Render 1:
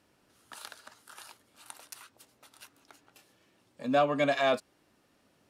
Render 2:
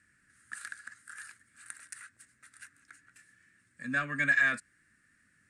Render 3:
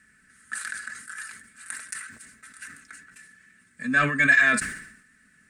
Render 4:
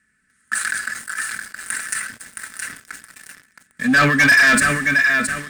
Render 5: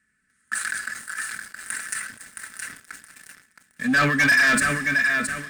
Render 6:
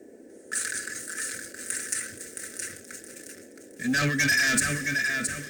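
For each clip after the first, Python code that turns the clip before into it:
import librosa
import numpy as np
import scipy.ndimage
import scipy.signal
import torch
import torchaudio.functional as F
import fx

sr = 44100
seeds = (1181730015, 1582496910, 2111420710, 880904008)

y1 = fx.curve_eq(x, sr, hz=(100.0, 230.0, 440.0, 870.0, 1700.0, 3100.0, 5800.0, 8700.0, 13000.0), db=(0, -4, -17, -23, 13, -11, -5, 8, -18))
y2 = y1 + 0.6 * np.pad(y1, (int(4.6 * sr / 1000.0), 0))[:len(y1)]
y2 = fx.sustainer(y2, sr, db_per_s=75.0)
y2 = y2 * librosa.db_to_amplitude(7.0)
y3 = fx.echo_feedback(y2, sr, ms=669, feedback_pct=32, wet_db=-8.0)
y3 = fx.leveller(y3, sr, passes=3)
y4 = y3 + 10.0 ** (-19.5 / 20.0) * np.pad(y3, (int(473 * sr / 1000.0), 0))[:len(y3)]
y4 = y4 * librosa.db_to_amplitude(-5.0)
y5 = fx.law_mismatch(y4, sr, coded='mu')
y5 = fx.graphic_eq_15(y5, sr, hz=(100, 1000, 6300, 16000), db=(11, -12, 9, 9))
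y5 = fx.dmg_noise_band(y5, sr, seeds[0], low_hz=220.0, high_hz=540.0, level_db=-44.0)
y5 = y5 * librosa.db_to_amplitude(-5.0)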